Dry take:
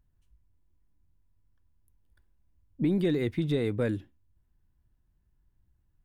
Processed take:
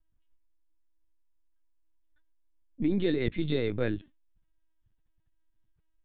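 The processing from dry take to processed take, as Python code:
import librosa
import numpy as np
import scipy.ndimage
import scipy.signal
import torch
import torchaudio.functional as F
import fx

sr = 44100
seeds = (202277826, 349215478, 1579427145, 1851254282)

y = fx.lpc_vocoder(x, sr, seeds[0], excitation='pitch_kept', order=16)
y = fx.high_shelf(y, sr, hz=2700.0, db=fx.steps((0.0, 4.5), (2.9, 10.5)))
y = y * 10.0 ** (-1.0 / 20.0)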